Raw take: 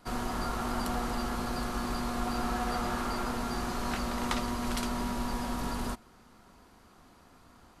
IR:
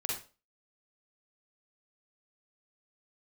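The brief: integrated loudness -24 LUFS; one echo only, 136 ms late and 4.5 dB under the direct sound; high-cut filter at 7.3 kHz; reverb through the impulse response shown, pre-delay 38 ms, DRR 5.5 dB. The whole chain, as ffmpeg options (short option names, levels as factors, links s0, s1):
-filter_complex "[0:a]lowpass=7300,aecho=1:1:136:0.596,asplit=2[s0][s1];[1:a]atrim=start_sample=2205,adelay=38[s2];[s1][s2]afir=irnorm=-1:irlink=0,volume=0.355[s3];[s0][s3]amix=inputs=2:normalize=0,volume=2.51"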